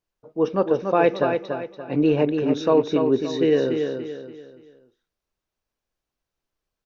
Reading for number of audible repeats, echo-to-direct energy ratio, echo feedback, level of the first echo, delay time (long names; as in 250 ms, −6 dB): 4, −5.5 dB, 37%, −6.0 dB, 287 ms